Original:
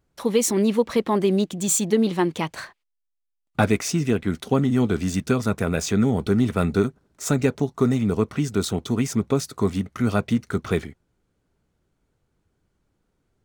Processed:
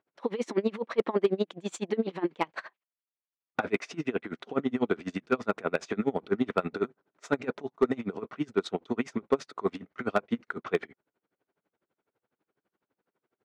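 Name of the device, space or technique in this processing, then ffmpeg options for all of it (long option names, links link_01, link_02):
helicopter radio: -af "highpass=350,lowpass=2500,aeval=exprs='val(0)*pow(10,-26*(0.5-0.5*cos(2*PI*12*n/s))/20)':channel_layout=same,asoftclip=type=hard:threshold=-17.5dB,volume=3dB"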